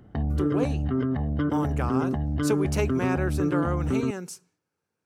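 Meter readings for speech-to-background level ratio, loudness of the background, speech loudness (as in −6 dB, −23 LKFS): −5.0 dB, −27.0 LKFS, −32.0 LKFS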